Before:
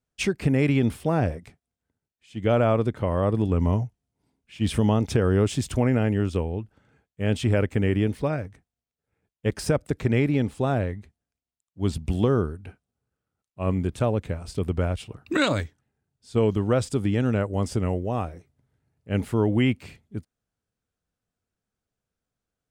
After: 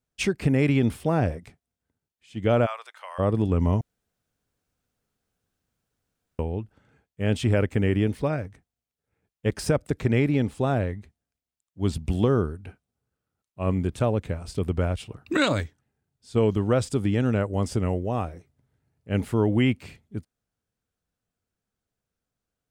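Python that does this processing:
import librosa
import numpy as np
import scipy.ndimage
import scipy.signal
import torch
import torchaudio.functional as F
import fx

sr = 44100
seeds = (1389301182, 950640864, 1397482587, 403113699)

y = fx.bessel_highpass(x, sr, hz=1300.0, order=6, at=(2.65, 3.18), fade=0.02)
y = fx.edit(y, sr, fx.room_tone_fill(start_s=3.81, length_s=2.58), tone=tone)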